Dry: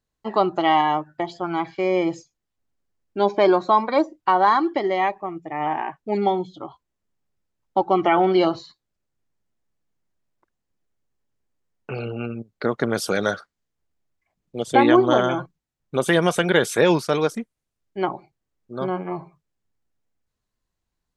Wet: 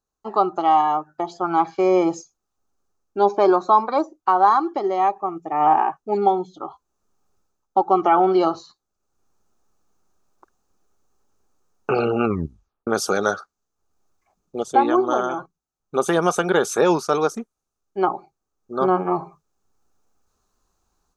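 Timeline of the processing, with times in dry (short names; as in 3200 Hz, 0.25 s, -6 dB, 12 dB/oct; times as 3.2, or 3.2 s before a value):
12.24 tape stop 0.63 s
whole clip: thirty-one-band EQ 125 Hz -11 dB, 400 Hz +6 dB, 800 Hz +8 dB, 1250 Hz +11 dB, 2000 Hz -11 dB, 3150 Hz -5 dB, 6300 Hz +9 dB; AGC gain up to 14 dB; gain -4.5 dB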